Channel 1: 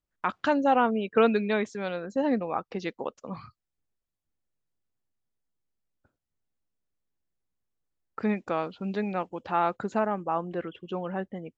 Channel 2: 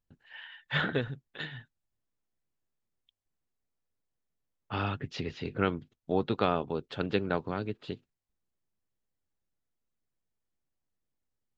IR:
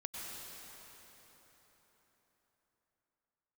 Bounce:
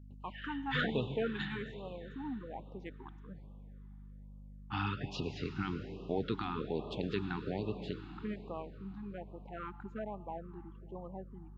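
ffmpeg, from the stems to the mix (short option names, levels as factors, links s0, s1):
-filter_complex "[0:a]afwtdn=0.0141,volume=0.2,asplit=2[s0][s1];[s1]volume=0.158[s2];[1:a]alimiter=limit=0.106:level=0:latency=1:release=25,aeval=exprs='val(0)+0.00398*(sin(2*PI*50*n/s)+sin(2*PI*2*50*n/s)/2+sin(2*PI*3*50*n/s)/3+sin(2*PI*4*50*n/s)/4+sin(2*PI*5*50*n/s)/5)':c=same,volume=0.531,asplit=2[s3][s4];[s4]volume=0.631[s5];[2:a]atrim=start_sample=2205[s6];[s2][s5]amix=inputs=2:normalize=0[s7];[s7][s6]afir=irnorm=-1:irlink=0[s8];[s0][s3][s8]amix=inputs=3:normalize=0,afftfilt=real='re*(1-between(b*sr/1024,500*pow(1800/500,0.5+0.5*sin(2*PI*1.2*pts/sr))/1.41,500*pow(1800/500,0.5+0.5*sin(2*PI*1.2*pts/sr))*1.41))':imag='im*(1-between(b*sr/1024,500*pow(1800/500,0.5+0.5*sin(2*PI*1.2*pts/sr))/1.41,500*pow(1800/500,0.5+0.5*sin(2*PI*1.2*pts/sr))*1.41))':win_size=1024:overlap=0.75"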